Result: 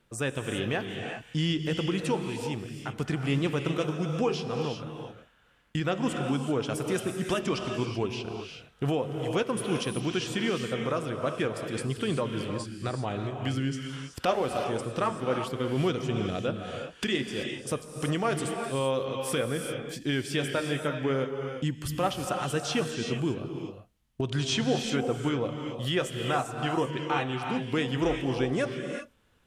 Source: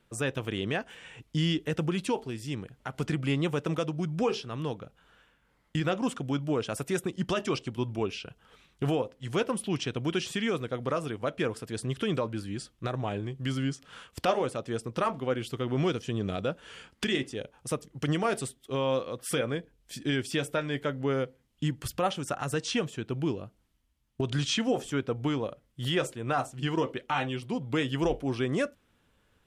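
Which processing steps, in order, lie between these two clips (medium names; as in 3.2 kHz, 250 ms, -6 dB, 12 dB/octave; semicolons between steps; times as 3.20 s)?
gated-style reverb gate 410 ms rising, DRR 4 dB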